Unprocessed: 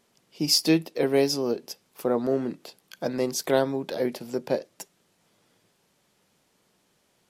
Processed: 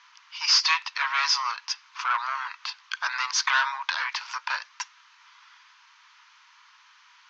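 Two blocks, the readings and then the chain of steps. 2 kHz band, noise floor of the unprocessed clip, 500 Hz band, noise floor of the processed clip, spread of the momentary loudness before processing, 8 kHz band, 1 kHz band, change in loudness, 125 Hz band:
+12.5 dB, -69 dBFS, -30.0 dB, -57 dBFS, 16 LU, +1.5 dB, +9.0 dB, +0.5 dB, under -40 dB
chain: overdrive pedal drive 21 dB, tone 1400 Hz, clips at -8.5 dBFS; Chebyshev band-pass 970–6400 Hz, order 5; gain +7.5 dB

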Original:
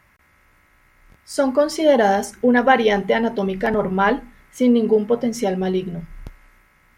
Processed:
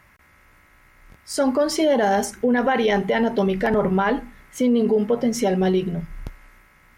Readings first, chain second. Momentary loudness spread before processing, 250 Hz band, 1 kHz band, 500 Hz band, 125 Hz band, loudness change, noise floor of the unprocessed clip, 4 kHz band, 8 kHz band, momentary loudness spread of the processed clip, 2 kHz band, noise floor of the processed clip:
8 LU, -1.0 dB, -3.5 dB, -2.0 dB, +1.5 dB, -2.0 dB, -57 dBFS, -1.0 dB, +2.5 dB, 10 LU, -4.0 dB, -55 dBFS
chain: limiter -14 dBFS, peak gain reduction 11.5 dB; gain +2.5 dB

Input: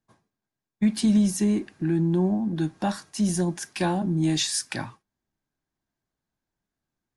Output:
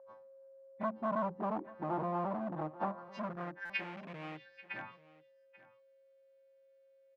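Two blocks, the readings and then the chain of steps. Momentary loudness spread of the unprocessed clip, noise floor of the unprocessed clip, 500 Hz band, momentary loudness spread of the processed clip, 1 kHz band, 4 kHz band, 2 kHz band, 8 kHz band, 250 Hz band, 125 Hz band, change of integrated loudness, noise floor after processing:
8 LU, under -85 dBFS, -8.0 dB, 17 LU, -2.5 dB, -21.5 dB, -5.5 dB, under -40 dB, -19.0 dB, -19.0 dB, -14.0 dB, -66 dBFS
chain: frequency quantiser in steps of 2 st; LPF 5500 Hz 24 dB/oct; treble ducked by the level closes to 500 Hz, closed at -23 dBFS; tilt -3 dB/oct; in parallel at -1.5 dB: compressor 6:1, threshold -29 dBFS, peak gain reduction 16.5 dB; on the sum: hard clip -18.5 dBFS, distortion -8 dB; whine 540 Hz -45 dBFS; band-pass sweep 1000 Hz -> 2400 Hz, 3.03–3.89; on a send: echo 0.837 s -19 dB; on the sum: stuck buffer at 3.65, samples 256, times 7; gain +1 dB

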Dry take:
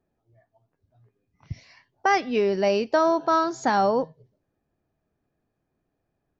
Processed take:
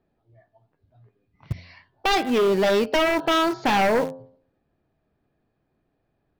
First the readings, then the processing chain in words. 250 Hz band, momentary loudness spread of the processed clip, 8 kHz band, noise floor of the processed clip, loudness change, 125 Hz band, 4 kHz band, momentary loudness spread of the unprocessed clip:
+3.0 dB, 16 LU, n/a, -74 dBFS, +1.5 dB, +4.0 dB, +9.0 dB, 20 LU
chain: steep low-pass 4600 Hz 36 dB/oct; de-hum 87.76 Hz, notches 20; in parallel at -11.5 dB: bit-crush 5-bit; on the sum: sine folder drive 8 dB, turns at -9 dBFS; gain -7 dB

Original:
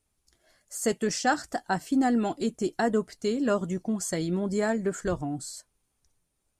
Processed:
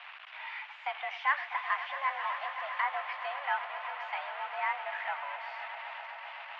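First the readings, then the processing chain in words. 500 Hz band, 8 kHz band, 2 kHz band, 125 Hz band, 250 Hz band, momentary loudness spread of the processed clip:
-15.5 dB, under -40 dB, +2.5 dB, under -40 dB, under -40 dB, 10 LU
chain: zero-crossing step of -28.5 dBFS; on a send: swelling echo 0.129 s, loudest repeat 5, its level -14 dB; on the sum: mistuned SSB +280 Hz 470–2600 Hz; tilt shelf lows -7 dB, about 1100 Hz; gain -5.5 dB

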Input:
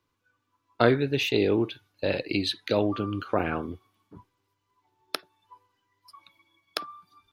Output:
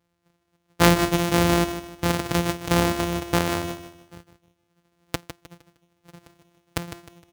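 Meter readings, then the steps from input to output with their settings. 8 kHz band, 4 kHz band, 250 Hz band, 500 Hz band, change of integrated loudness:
+16.0 dB, +3.0 dB, +4.5 dB, +0.5 dB, +4.0 dB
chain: sample sorter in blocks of 256 samples; HPF 50 Hz; feedback echo 0.154 s, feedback 33%, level -11 dB; gain +4 dB

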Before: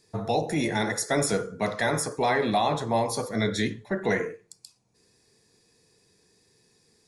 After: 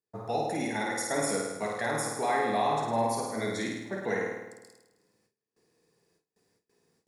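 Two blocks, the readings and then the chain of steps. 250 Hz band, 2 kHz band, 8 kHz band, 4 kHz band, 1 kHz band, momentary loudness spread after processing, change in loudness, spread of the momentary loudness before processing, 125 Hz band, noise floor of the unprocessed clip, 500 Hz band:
-5.5 dB, -4.0 dB, -3.0 dB, -7.0 dB, -1.5 dB, 7 LU, -3.5 dB, 5 LU, -8.5 dB, -66 dBFS, -4.0 dB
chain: HPF 230 Hz 6 dB/oct; bell 3400 Hz -6 dB 1 oct; flutter echo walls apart 9 m, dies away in 1.1 s; bit-crush 11-bit; gate with hold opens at -53 dBFS; mismatched tape noise reduction decoder only; gain -5.5 dB

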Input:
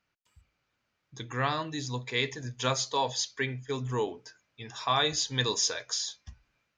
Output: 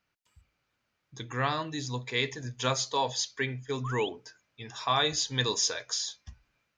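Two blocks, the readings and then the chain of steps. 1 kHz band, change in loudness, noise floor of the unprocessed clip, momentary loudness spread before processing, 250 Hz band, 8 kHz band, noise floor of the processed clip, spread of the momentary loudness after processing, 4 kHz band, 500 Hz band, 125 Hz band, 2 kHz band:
0.0 dB, 0.0 dB, -80 dBFS, 12 LU, 0.0 dB, 0.0 dB, -80 dBFS, 12 LU, 0.0 dB, 0.0 dB, 0.0 dB, +0.5 dB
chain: painted sound rise, 3.84–4.09, 980–3600 Hz -38 dBFS

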